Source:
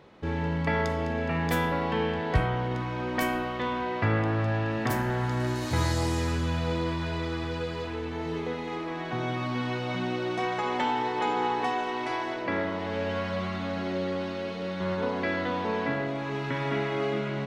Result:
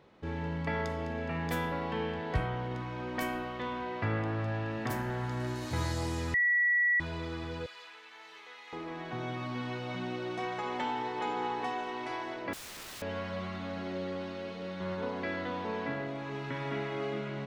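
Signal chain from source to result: 6.34–7.00 s: bleep 1.94 kHz -17 dBFS; 7.66–8.73 s: high-pass 1.4 kHz 12 dB/octave; 12.53–13.02 s: integer overflow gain 34 dB; trim -6.5 dB

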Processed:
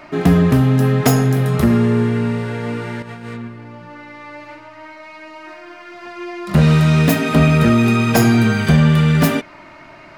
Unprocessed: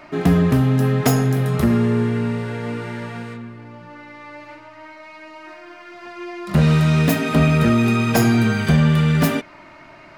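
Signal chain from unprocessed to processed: 3.02–3.48 s: compressor with a negative ratio -33 dBFS, ratio -0.5; trim +3 dB

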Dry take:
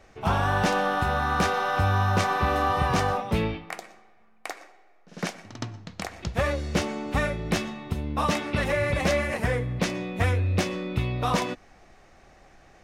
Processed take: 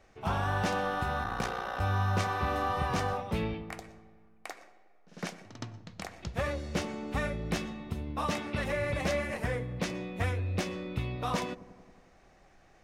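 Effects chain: 1.23–1.81 s: ring modulator 30 Hz; feedback echo behind a low-pass 91 ms, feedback 70%, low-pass 620 Hz, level -14 dB; trim -7 dB

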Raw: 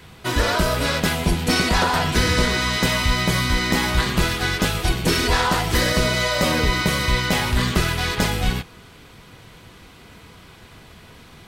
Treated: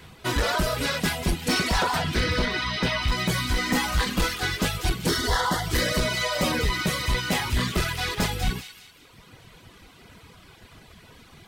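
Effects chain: reverb removal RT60 1.2 s; 2.01–3.08 s: Savitzky-Golay filter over 15 samples; 3.58–4.34 s: comb 3.9 ms, depth 67%; hard clipper -16 dBFS, distortion -13 dB; 5.08–5.66 s: Butterworth band-stop 2.5 kHz, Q 2.8; feedback echo behind a high-pass 192 ms, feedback 41%, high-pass 2.2 kHz, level -7 dB; trim -2 dB

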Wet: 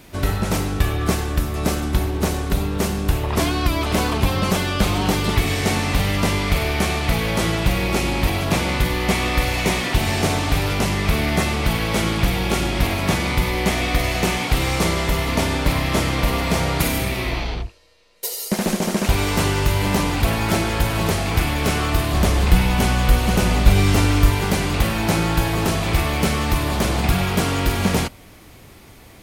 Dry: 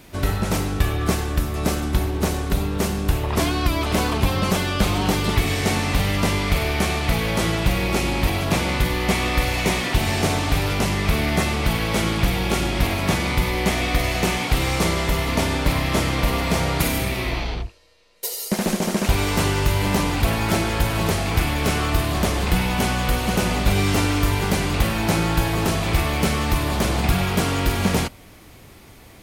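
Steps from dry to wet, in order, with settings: 22.13–24.30 s: bass shelf 81 Hz +9.5 dB; trim +1 dB

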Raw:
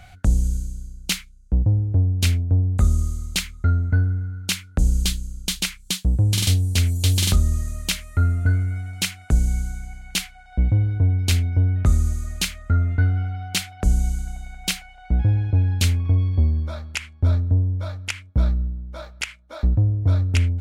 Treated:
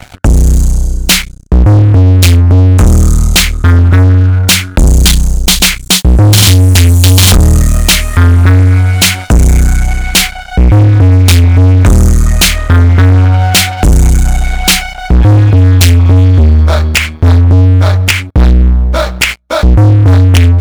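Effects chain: level rider gain up to 5 dB; waveshaping leveller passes 5; trim +3 dB

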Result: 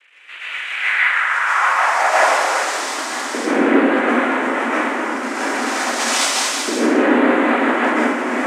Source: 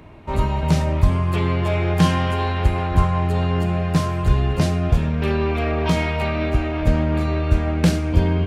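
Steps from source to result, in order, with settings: one-bit delta coder 64 kbps, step -32.5 dBFS; level rider gain up to 4 dB; LFO band-pass saw up 0.3 Hz 370–2800 Hz; noise-vocoded speech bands 3; frequency shift +130 Hz; plate-style reverb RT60 0.94 s, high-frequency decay 0.85×, pre-delay 110 ms, DRR -8 dB; high-pass sweep 2.7 kHz -> 240 Hz, 0.71–3.15 s; trim +2.5 dB

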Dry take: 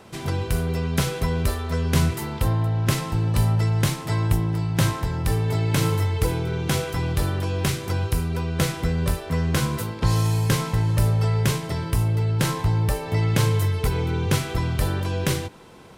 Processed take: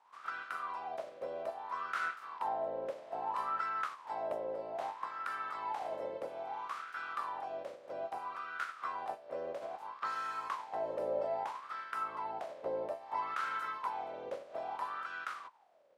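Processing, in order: spectral peaks clipped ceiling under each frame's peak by 27 dB; wah-wah 0.61 Hz 540–1400 Hz, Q 11; trim -2 dB

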